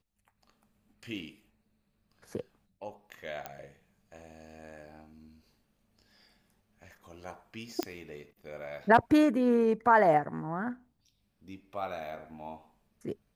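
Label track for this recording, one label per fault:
3.460000	3.460000	click −22 dBFS
7.830000	7.830000	click −15 dBFS

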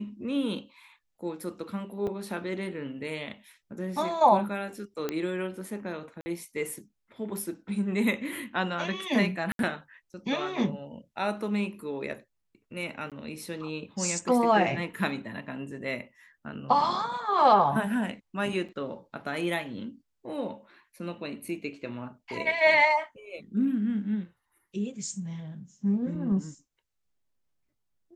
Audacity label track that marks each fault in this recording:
2.070000	2.070000	drop-out 4.5 ms
5.090000	5.090000	click −16 dBFS
6.210000	6.260000	drop-out 50 ms
9.520000	9.590000	drop-out 72 ms
13.100000	13.120000	drop-out 17 ms
18.680000	18.690000	drop-out 6.5 ms

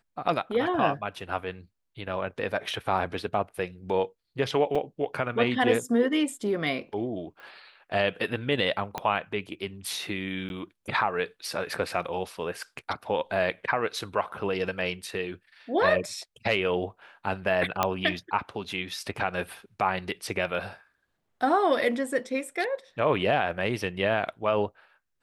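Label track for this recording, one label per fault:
4.750000	4.750000	drop-out 4.1 ms
7.400000	7.400000	click −36 dBFS
8.980000	8.980000	click −15 dBFS
10.490000	10.500000	drop-out
17.830000	17.830000	click −8 dBFS

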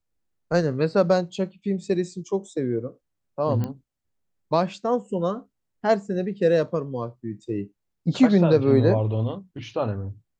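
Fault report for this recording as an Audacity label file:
3.640000	3.640000	click −17 dBFS

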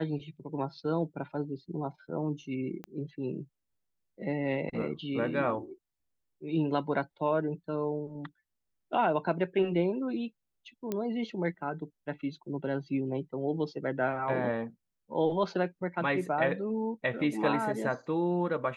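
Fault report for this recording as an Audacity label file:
2.840000	2.840000	click −27 dBFS
10.920000	10.920000	click −19 dBFS

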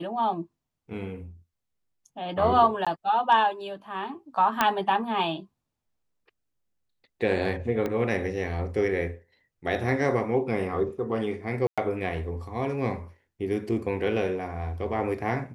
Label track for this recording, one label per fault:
2.850000	2.870000	drop-out 16 ms
4.610000	4.610000	click −7 dBFS
7.860000	7.860000	click −17 dBFS
11.670000	11.780000	drop-out 106 ms

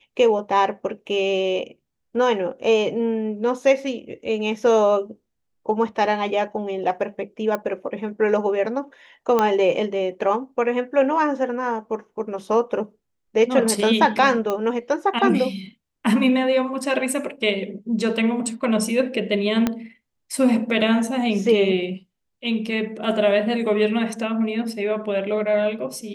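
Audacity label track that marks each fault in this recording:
7.550000	7.550000	click −12 dBFS
9.390000	9.390000	click −7 dBFS
14.500000	14.500000	click −12 dBFS
19.670000	19.670000	click −7 dBFS

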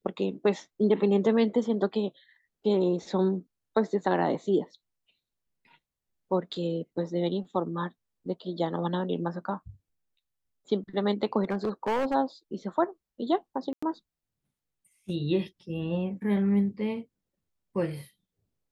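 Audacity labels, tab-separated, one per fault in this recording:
11.430000	12.150000	clipping −23.5 dBFS
13.730000	13.820000	drop-out 95 ms

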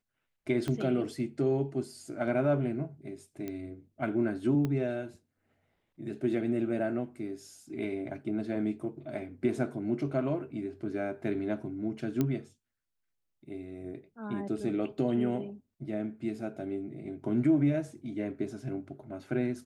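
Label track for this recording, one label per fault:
0.680000	0.680000	click −21 dBFS
3.480000	3.480000	click −24 dBFS
4.650000	4.650000	click −20 dBFS
12.210000	12.210000	click −16 dBFS

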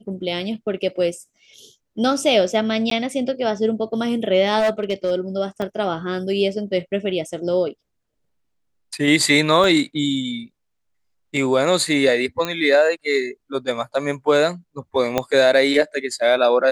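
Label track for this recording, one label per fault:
2.900000	2.910000	drop-out 13 ms
4.590000	5.120000	clipping −15 dBFS
5.620000	5.620000	drop-out 3.5 ms
9.640000	9.640000	drop-out 2.6 ms
12.450000	12.450000	click −9 dBFS
15.180000	15.180000	click −5 dBFS

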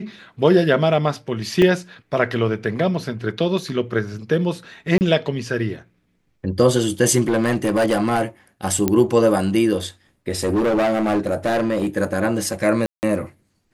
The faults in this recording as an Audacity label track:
1.620000	1.620000	drop-out 2.7 ms
4.980000	5.010000	drop-out 29 ms
7.280000	8.220000	clipping −13.5 dBFS
8.880000	8.880000	click −5 dBFS
10.320000	11.870000	clipping −15.5 dBFS
12.860000	13.030000	drop-out 169 ms

